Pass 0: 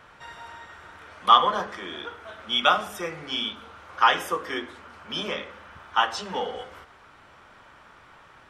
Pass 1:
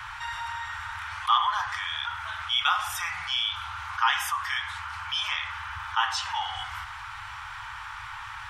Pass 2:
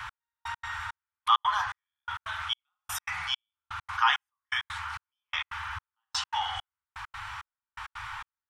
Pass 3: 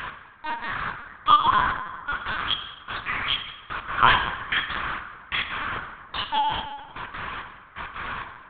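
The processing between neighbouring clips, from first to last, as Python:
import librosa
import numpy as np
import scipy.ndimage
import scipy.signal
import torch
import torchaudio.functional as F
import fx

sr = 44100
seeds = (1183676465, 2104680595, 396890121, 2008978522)

y1 = scipy.signal.sosfilt(scipy.signal.cheby1(4, 1.0, [110.0, 860.0], 'bandstop', fs=sr, output='sos'), x)
y1 = fx.env_flatten(y1, sr, amount_pct=50)
y1 = F.gain(torch.from_numpy(y1), -6.5).numpy()
y2 = fx.step_gate(y1, sr, bpm=166, pattern='x....x.xx', floor_db=-60.0, edge_ms=4.5)
y3 = fx.rev_plate(y2, sr, seeds[0], rt60_s=1.6, hf_ratio=0.6, predelay_ms=0, drr_db=5.0)
y3 = fx.lpc_vocoder(y3, sr, seeds[1], excitation='pitch_kept', order=8)
y3 = F.gain(torch.from_numpy(y3), 5.5).numpy()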